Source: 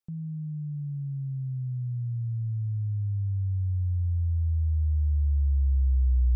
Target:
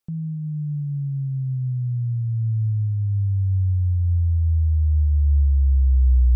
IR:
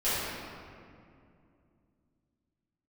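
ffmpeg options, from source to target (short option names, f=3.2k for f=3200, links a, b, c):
-filter_complex "[0:a]asplit=2[a][b];[1:a]atrim=start_sample=2205,asetrate=83790,aresample=44100[c];[b][c]afir=irnorm=-1:irlink=0,volume=-30dB[d];[a][d]amix=inputs=2:normalize=0,volume=7dB"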